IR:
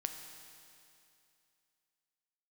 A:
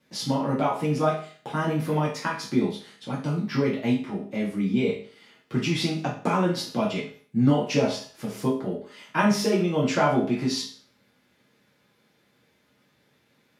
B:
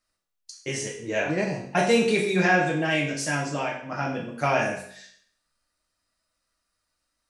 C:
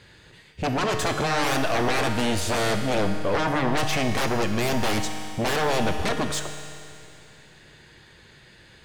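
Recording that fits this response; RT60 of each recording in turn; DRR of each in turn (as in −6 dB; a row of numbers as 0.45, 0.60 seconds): C; 0.45, 0.60, 2.6 seconds; −6.5, −4.0, 5.0 decibels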